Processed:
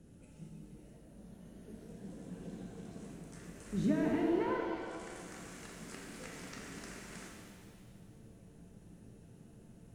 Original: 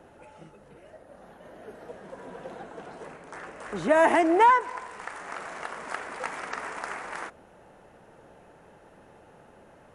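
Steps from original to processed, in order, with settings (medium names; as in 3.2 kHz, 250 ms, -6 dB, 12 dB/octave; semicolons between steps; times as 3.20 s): low-pass that closes with the level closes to 1.8 kHz, closed at -23 dBFS; FFT filter 200 Hz 0 dB, 840 Hz -29 dB, 7.4 kHz -4 dB; pitch-shifted reverb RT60 1.9 s, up +7 st, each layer -8 dB, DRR -0.5 dB; trim +2 dB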